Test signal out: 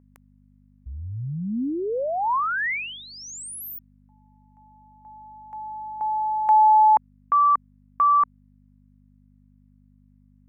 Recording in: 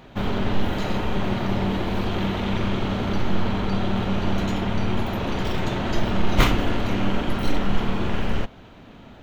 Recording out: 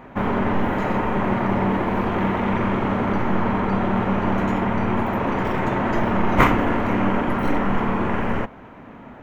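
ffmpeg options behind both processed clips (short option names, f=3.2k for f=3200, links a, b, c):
-af "aeval=exprs='val(0)+0.002*(sin(2*PI*50*n/s)+sin(2*PI*2*50*n/s)/2+sin(2*PI*3*50*n/s)/3+sin(2*PI*4*50*n/s)/4+sin(2*PI*5*50*n/s)/5)':c=same,equalizer=f=125:t=o:w=1:g=4,equalizer=f=250:t=o:w=1:g=8,equalizer=f=500:t=o:w=1:g=6,equalizer=f=1k:t=o:w=1:g=11,equalizer=f=2k:t=o:w=1:g=10,equalizer=f=4k:t=o:w=1:g=-10,volume=-5dB"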